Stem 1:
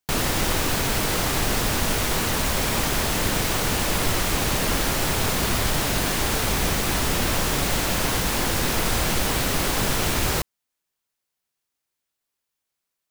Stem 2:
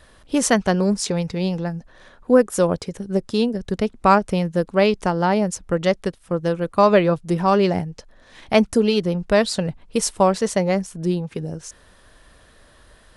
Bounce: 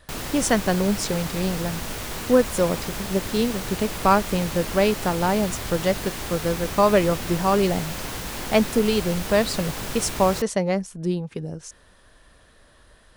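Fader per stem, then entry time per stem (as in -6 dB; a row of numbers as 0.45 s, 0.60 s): -8.5 dB, -3.0 dB; 0.00 s, 0.00 s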